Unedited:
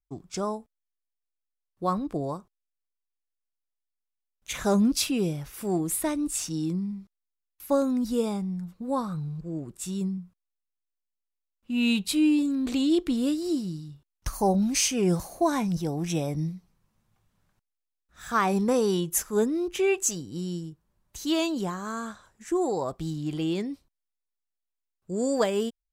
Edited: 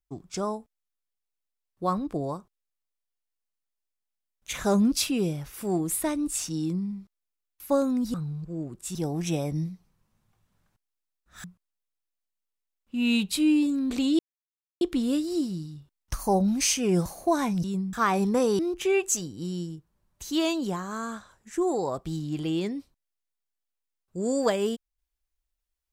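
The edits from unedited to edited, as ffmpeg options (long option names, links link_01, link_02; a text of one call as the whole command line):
ffmpeg -i in.wav -filter_complex "[0:a]asplit=8[link_01][link_02][link_03][link_04][link_05][link_06][link_07][link_08];[link_01]atrim=end=8.142[link_09];[link_02]atrim=start=9.098:end=9.912[link_10];[link_03]atrim=start=15.778:end=18.272[link_11];[link_04]atrim=start=10.198:end=12.95,asetpts=PTS-STARTPTS,afade=type=out:start_time=2.748:duration=0.004:curve=hsin,apad=pad_dur=0.62[link_12];[link_05]atrim=start=12.95:end=15.782,asetpts=PTS-STARTPTS,afade=type=in:duration=0.004:curve=hsin[link_13];[link_06]atrim=start=9.908:end=10.202[link_14];[link_07]atrim=start=18.268:end=18.932[link_15];[link_08]atrim=start=19.528[link_16];[link_09][link_10]acrossfade=duration=0.004:curve1=hsin:curve2=hsin[link_17];[link_17][link_11]acrossfade=duration=0.004:curve1=hsin:curve2=hsin[link_18];[link_12][link_13]concat=n=2:v=0:a=1[link_19];[link_18][link_19]acrossfade=duration=0.004:curve1=hsin:curve2=hsin[link_20];[link_20][link_14]acrossfade=duration=0.004:curve1=hsin:curve2=hsin[link_21];[link_21][link_15]acrossfade=duration=0.004:curve1=hsin:curve2=hsin[link_22];[link_22][link_16]acrossfade=duration=0.004:curve1=hsin:curve2=hsin" out.wav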